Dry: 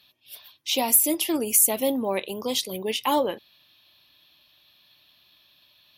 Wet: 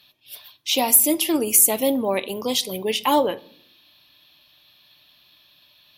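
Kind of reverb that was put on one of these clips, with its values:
rectangular room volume 1,000 cubic metres, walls furnished, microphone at 0.4 metres
level +3.5 dB

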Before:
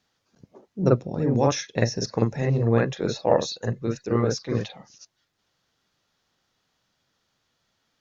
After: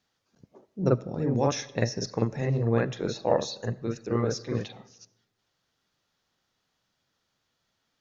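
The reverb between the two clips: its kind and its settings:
comb and all-pass reverb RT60 1 s, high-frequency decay 0.6×, pre-delay 30 ms, DRR 19.5 dB
level −4 dB

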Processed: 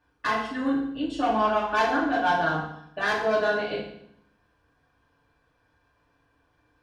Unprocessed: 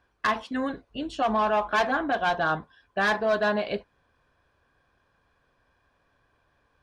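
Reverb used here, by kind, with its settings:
feedback delay network reverb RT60 0.71 s, low-frequency decay 1.35×, high-frequency decay 0.95×, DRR −6 dB
level −6.5 dB

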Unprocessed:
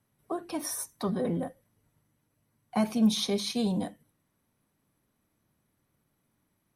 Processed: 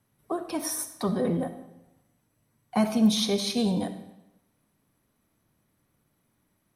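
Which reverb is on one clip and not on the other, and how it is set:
comb and all-pass reverb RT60 0.93 s, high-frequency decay 0.9×, pre-delay 20 ms, DRR 10 dB
level +3 dB

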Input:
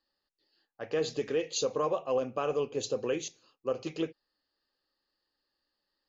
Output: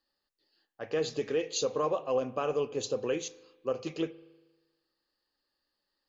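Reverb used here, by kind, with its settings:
spring reverb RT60 1.2 s, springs 39 ms, chirp 60 ms, DRR 17.5 dB

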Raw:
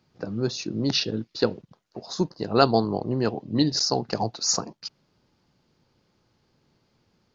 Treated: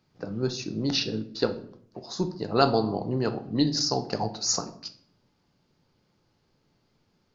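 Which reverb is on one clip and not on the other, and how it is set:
rectangular room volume 84 cubic metres, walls mixed, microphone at 0.32 metres
level −3 dB

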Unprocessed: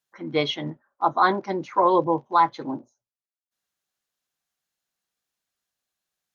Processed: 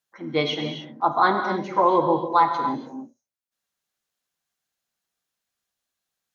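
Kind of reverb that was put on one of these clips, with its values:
reverb whose tail is shaped and stops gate 320 ms flat, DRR 5 dB

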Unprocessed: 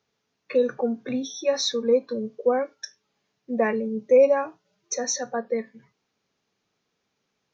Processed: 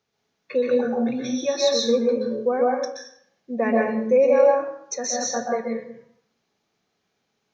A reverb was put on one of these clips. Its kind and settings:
dense smooth reverb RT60 0.67 s, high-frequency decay 0.7×, pre-delay 115 ms, DRR −2 dB
level −1.5 dB

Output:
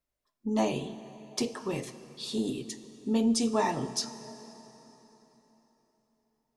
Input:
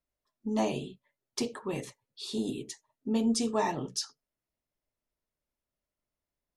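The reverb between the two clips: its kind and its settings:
dense smooth reverb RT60 4 s, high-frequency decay 0.8×, DRR 12.5 dB
level +1.5 dB

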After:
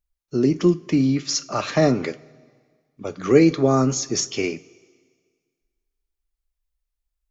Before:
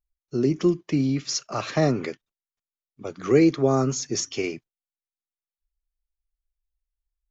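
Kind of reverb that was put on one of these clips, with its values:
coupled-rooms reverb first 0.23 s, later 1.7 s, from −18 dB, DRR 11.5 dB
level +3.5 dB

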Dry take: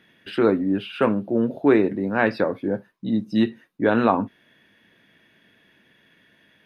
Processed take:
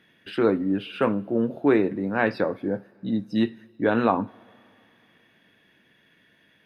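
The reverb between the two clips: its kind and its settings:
coupled-rooms reverb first 0.34 s, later 2.9 s, from −17 dB, DRR 17.5 dB
level −2.5 dB

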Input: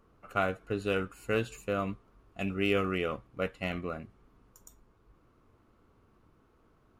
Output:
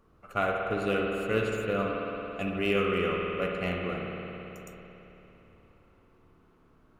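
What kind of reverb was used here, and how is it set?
spring reverb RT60 3.6 s, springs 55 ms, chirp 35 ms, DRR −0.5 dB

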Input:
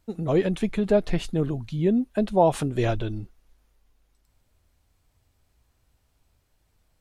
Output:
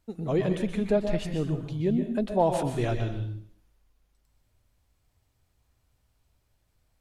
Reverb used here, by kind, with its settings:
dense smooth reverb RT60 0.55 s, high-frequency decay 1×, pre-delay 110 ms, DRR 5.5 dB
level −4.5 dB

